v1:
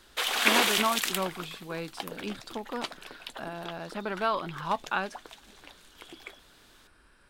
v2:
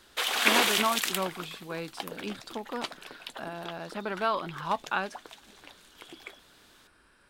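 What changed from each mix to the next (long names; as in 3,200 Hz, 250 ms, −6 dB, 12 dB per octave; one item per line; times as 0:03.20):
speech: add low-shelf EQ 62 Hz −10 dB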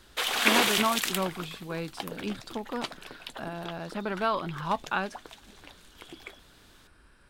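master: add low-shelf EQ 150 Hz +12 dB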